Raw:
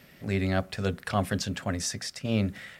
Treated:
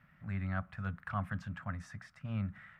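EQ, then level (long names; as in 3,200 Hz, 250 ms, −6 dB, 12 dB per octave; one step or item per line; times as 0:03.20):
drawn EQ curve 170 Hz 0 dB, 420 Hz −22 dB, 620 Hz −10 dB, 1,300 Hz +4 dB, 4,700 Hz −23 dB
−6.5 dB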